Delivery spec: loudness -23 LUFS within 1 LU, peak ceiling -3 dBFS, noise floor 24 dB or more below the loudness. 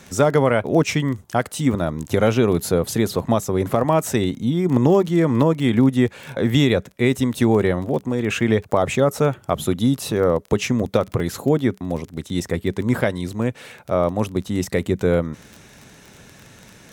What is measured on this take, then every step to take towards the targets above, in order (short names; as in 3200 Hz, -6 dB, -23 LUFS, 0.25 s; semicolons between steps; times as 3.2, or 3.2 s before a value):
ticks 20/s; loudness -20.5 LUFS; peak -2.5 dBFS; loudness target -23.0 LUFS
-> de-click; gain -2.5 dB